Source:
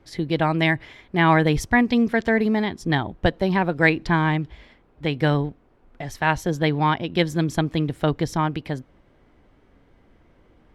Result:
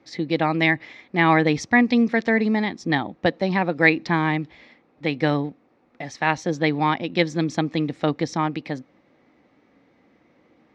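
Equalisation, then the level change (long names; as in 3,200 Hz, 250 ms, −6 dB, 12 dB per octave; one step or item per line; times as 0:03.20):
loudspeaker in its box 260–5,800 Hz, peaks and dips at 400 Hz −9 dB, 650 Hz −6 dB, 990 Hz −7 dB, 1,500 Hz −9 dB, 3,100 Hz −9 dB, 4,800 Hz −3 dB
+5.5 dB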